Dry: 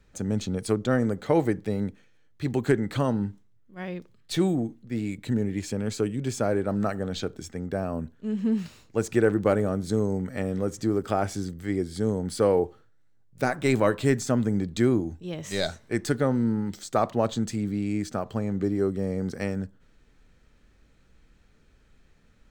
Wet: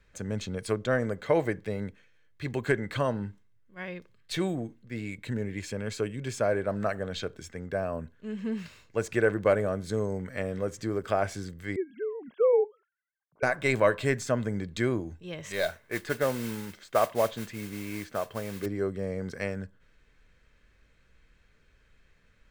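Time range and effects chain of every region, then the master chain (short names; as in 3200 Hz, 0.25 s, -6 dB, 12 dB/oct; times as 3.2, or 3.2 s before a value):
11.76–13.43 sine-wave speech + LPF 2300 Hz
15.52–18.66 tone controls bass -5 dB, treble -13 dB + modulation noise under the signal 14 dB
whole clip: bell 2000 Hz +8 dB 1.6 oct; comb 1.9 ms, depth 31%; dynamic EQ 650 Hz, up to +5 dB, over -36 dBFS, Q 2.9; gain -5.5 dB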